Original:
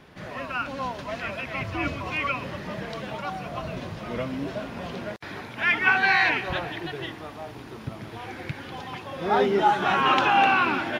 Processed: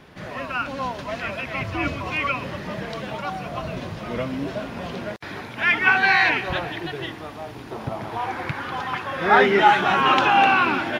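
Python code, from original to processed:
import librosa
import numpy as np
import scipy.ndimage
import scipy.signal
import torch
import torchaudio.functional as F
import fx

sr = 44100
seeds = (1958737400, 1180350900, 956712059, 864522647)

y = fx.peak_eq(x, sr, hz=fx.line((7.7, 680.0), (9.8, 2300.0)), db=12.0, octaves=1.2, at=(7.7, 9.8), fade=0.02)
y = y * librosa.db_to_amplitude(3.0)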